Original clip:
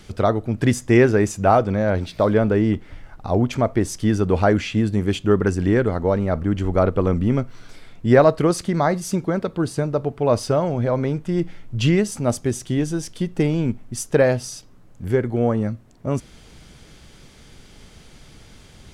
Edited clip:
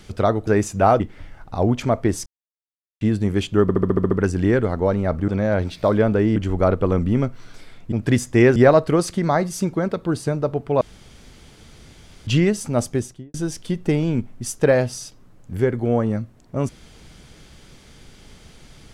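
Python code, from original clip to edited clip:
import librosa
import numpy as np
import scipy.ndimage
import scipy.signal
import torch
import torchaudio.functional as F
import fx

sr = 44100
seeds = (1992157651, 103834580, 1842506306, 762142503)

y = fx.studio_fade_out(x, sr, start_s=12.43, length_s=0.42)
y = fx.edit(y, sr, fx.move(start_s=0.47, length_s=0.64, to_s=8.07),
    fx.move(start_s=1.64, length_s=1.08, to_s=6.51),
    fx.silence(start_s=3.98, length_s=0.75),
    fx.stutter(start_s=5.34, slice_s=0.07, count=8),
    fx.room_tone_fill(start_s=10.32, length_s=1.46), tone=tone)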